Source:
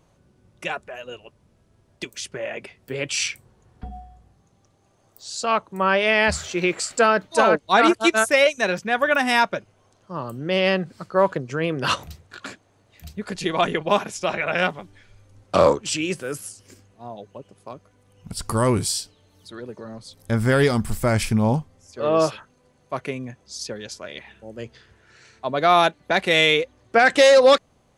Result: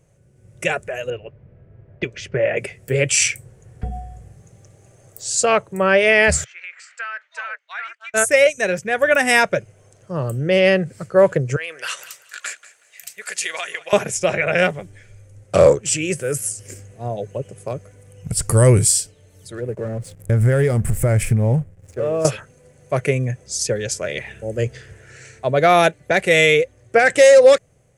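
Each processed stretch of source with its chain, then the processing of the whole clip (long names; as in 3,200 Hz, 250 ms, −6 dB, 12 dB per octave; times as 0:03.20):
0:01.10–0:02.57: low-pass that shuts in the quiet parts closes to 2,000 Hz, open at −27 dBFS + high-frequency loss of the air 250 metres
0:06.44–0:08.14: high-pass filter 1,400 Hz 24 dB per octave + head-to-tape spacing loss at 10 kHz 43 dB + downward compressor 2 to 1, threshold −37 dBFS
0:11.56–0:13.93: high-pass filter 1,400 Hz + downward compressor 3 to 1, threshold −29 dBFS + repeating echo 186 ms, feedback 22%, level −17 dB
0:19.55–0:22.25: downward compressor 3 to 1, threshold −29 dBFS + parametric band 5,300 Hz −9.5 dB 1.6 octaves + slack as between gear wheels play −48 dBFS
whole clip: octave-band graphic EQ 125/250/500/1,000/2,000/4,000/8,000 Hz +9/−8/+7/−11/+5/−10/+9 dB; automatic gain control; level −1 dB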